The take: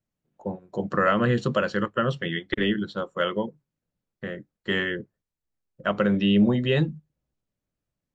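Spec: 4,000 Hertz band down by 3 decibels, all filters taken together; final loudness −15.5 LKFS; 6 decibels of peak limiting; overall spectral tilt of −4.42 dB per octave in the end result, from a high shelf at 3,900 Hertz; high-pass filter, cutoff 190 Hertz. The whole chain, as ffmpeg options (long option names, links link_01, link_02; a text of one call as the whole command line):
ffmpeg -i in.wav -af "highpass=190,highshelf=frequency=3900:gain=6.5,equalizer=frequency=4000:width_type=o:gain=-8.5,volume=13dB,alimiter=limit=-2.5dB:level=0:latency=1" out.wav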